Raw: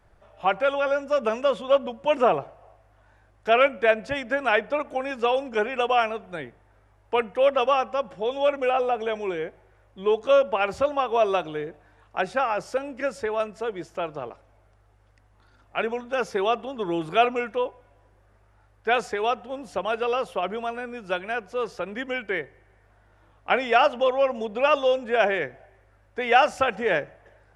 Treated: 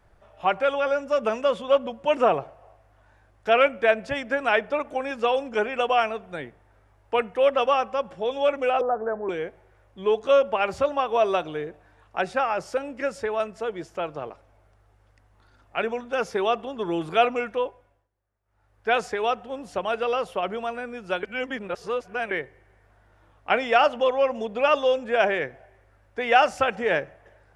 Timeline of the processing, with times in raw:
0:08.81–0:09.29: Butterworth low-pass 1,700 Hz 72 dB per octave
0:17.62–0:18.90: duck −22.5 dB, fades 0.46 s
0:21.23–0:22.31: reverse

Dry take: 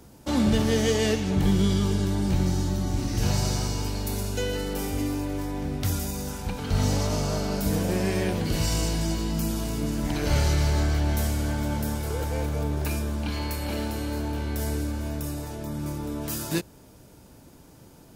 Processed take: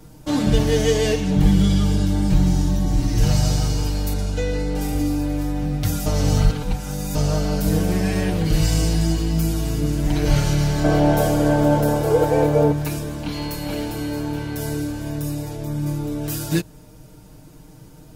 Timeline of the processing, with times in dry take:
0:04.13–0:04.81: high-frequency loss of the air 53 metres
0:06.06–0:07.15: reverse
0:10.84–0:12.72: parametric band 580 Hz +14 dB 2.1 octaves
whole clip: low-shelf EQ 110 Hz +11 dB; comb filter 6.5 ms, depth 98%

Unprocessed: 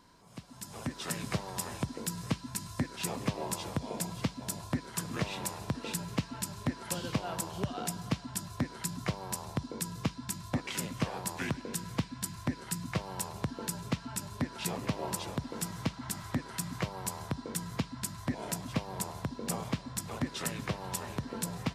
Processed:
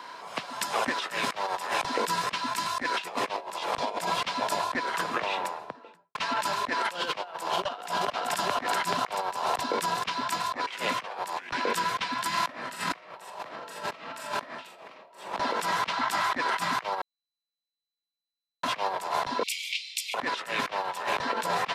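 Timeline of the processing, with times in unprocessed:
0:04.40–0:06.15: fade out and dull
0:07.26–0:08.08: delay throw 430 ms, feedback 70%, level −6.5 dB
0:12.28–0:15.15: thrown reverb, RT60 0.83 s, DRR −5 dB
0:17.03–0:18.62: beep over 4,000 Hz −6.5 dBFS
0:19.43–0:20.14: Butterworth high-pass 2,200 Hz 96 dB per octave
whole clip: high-pass filter 220 Hz 12 dB per octave; three-way crossover with the lows and the highs turned down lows −19 dB, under 520 Hz, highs −15 dB, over 3,900 Hz; compressor whose output falls as the input rises −48 dBFS, ratio −0.5; level +8.5 dB

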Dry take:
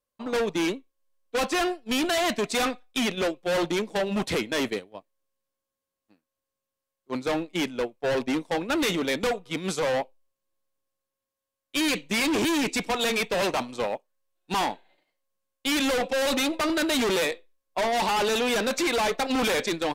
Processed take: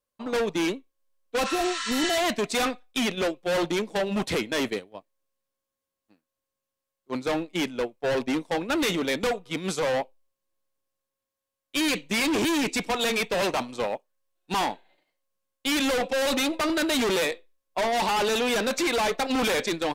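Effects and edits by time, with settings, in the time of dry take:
0:01.48–0:02.09: healed spectral selection 960–9,300 Hz

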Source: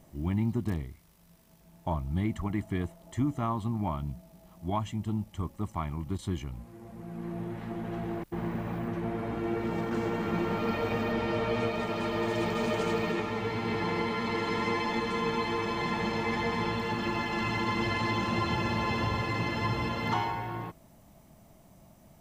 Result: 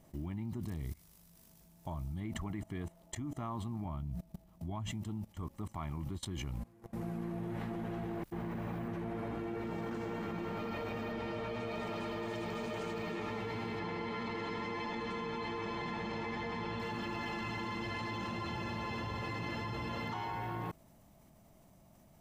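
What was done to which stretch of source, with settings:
0:00.63–0:02.20: bass and treble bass +3 dB, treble +8 dB
0:03.85–0:04.91: low-shelf EQ 220 Hz +9.5 dB
0:13.79–0:16.80: high-frequency loss of the air 56 metres
whole clip: output level in coarse steps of 23 dB; level +7 dB

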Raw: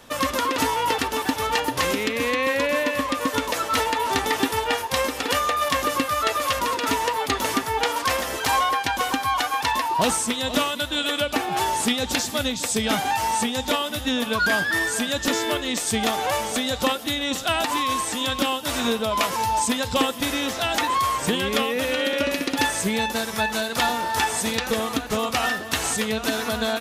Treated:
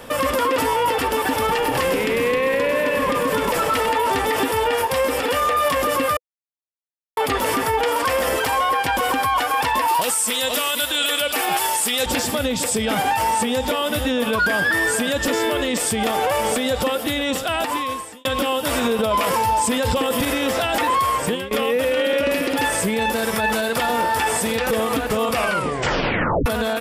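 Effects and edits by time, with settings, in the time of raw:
0:01.29–0:03.89: echo with shifted repeats 99 ms, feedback 63%, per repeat −43 Hz, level −10 dB
0:06.17–0:07.17: silence
0:09.88–0:12.06: spectral tilt +3.5 dB per octave
0:16.98–0:18.25: fade out
0:18.99–0:20.25: clip gain +8.5 dB
0:20.95–0:21.51: fade out, to −23 dB
0:25.32: tape stop 1.14 s
whole clip: thirty-one-band graphic EQ 500 Hz +7 dB, 4,000 Hz −7 dB, 6,300 Hz −9 dB; brickwall limiter −21 dBFS; level +9 dB

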